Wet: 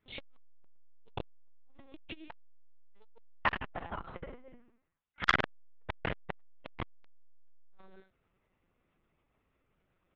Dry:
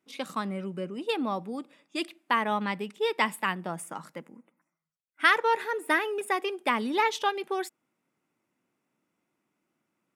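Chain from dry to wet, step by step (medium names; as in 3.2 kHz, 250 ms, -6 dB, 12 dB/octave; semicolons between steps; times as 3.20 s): chorus voices 2, 0.58 Hz, delay 22 ms, depth 3.1 ms; on a send: multi-tap echo 50/78 ms -12/-16.5 dB; on the sum: gated-style reverb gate 400 ms falling, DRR 5 dB; LPC vocoder at 8 kHz pitch kept; transformer saturation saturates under 2.1 kHz; trim +5 dB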